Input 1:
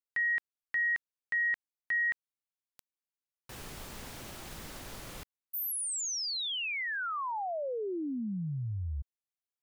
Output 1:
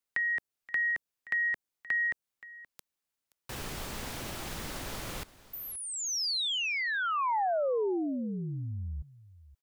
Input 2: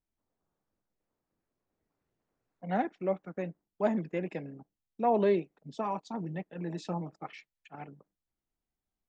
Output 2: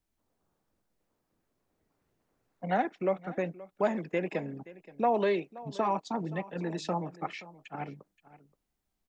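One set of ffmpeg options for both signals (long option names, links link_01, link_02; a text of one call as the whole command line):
ffmpeg -i in.wav -filter_complex "[0:a]acrossover=split=370|910|5600[link_01][link_02][link_03][link_04];[link_01]acompressor=threshold=-43dB:ratio=4[link_05];[link_02]acompressor=threshold=-35dB:ratio=4[link_06];[link_03]acompressor=threshold=-38dB:ratio=4[link_07];[link_04]acompressor=threshold=-50dB:ratio=4[link_08];[link_05][link_06][link_07][link_08]amix=inputs=4:normalize=0,aecho=1:1:525:0.119,volume=6.5dB" out.wav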